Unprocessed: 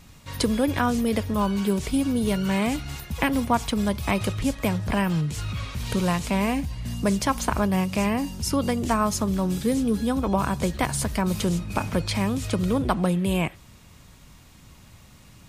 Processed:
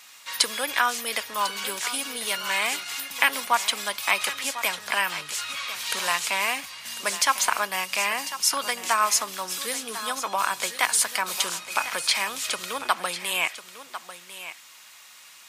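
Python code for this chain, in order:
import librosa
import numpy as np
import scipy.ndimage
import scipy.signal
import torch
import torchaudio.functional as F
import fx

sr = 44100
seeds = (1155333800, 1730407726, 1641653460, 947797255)

y = scipy.signal.sosfilt(scipy.signal.butter(2, 1300.0, 'highpass', fs=sr, output='sos'), x)
y = y + 10.0 ** (-13.0 / 20.0) * np.pad(y, (int(1048 * sr / 1000.0), 0))[:len(y)]
y = F.gain(torch.from_numpy(y), 8.0).numpy()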